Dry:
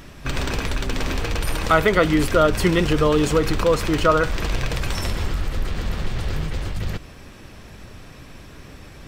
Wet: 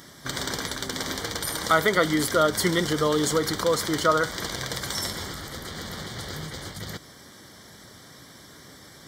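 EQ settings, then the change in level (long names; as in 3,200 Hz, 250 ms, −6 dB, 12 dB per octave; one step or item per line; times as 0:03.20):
high-pass filter 130 Hz 12 dB per octave
Butterworth band-reject 2,600 Hz, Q 2.9
high-shelf EQ 2,200 Hz +10 dB
−5.5 dB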